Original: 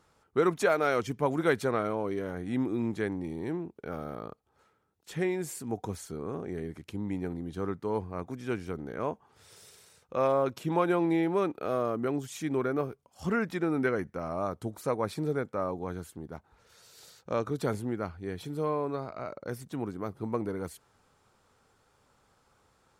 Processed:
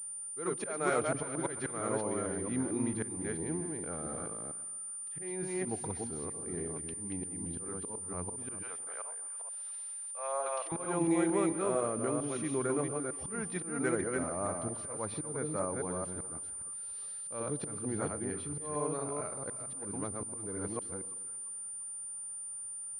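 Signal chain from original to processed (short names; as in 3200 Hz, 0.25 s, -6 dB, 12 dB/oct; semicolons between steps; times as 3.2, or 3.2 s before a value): reverse delay 0.226 s, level -3 dB; auto swell 0.248 s; 8.63–10.72 HPF 600 Hz 24 dB/oct; split-band echo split 1000 Hz, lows 0.13 s, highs 0.347 s, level -15.5 dB; pulse-width modulation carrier 9200 Hz; gain -4.5 dB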